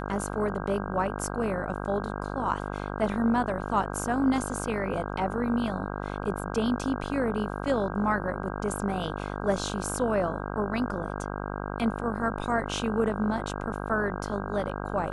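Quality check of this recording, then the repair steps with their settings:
buzz 50 Hz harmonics 32 -34 dBFS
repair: de-hum 50 Hz, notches 32

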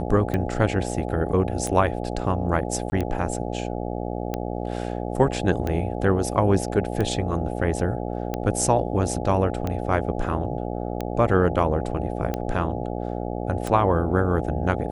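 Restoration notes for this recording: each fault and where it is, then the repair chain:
buzz 60 Hz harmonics 14 -29 dBFS
tick 45 rpm -14 dBFS
2.90–2.92 s: dropout 20 ms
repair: de-click; de-hum 60 Hz, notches 14; interpolate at 2.90 s, 20 ms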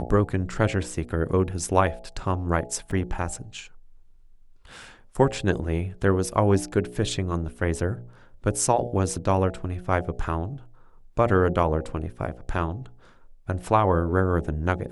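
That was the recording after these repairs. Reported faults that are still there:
nothing left

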